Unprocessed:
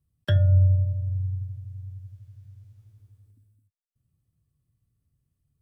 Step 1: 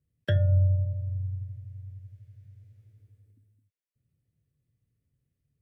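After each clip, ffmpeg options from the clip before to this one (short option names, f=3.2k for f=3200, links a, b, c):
-af "equalizer=f=125:t=o:w=1:g=4,equalizer=f=250:t=o:w=1:g=4,equalizer=f=500:t=o:w=1:g=11,equalizer=f=1k:t=o:w=1:g=-7,equalizer=f=2k:t=o:w=1:g=10,volume=-7dB"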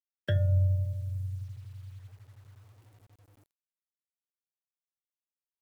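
-af "acrusher=bits=9:mix=0:aa=0.000001,volume=-3dB"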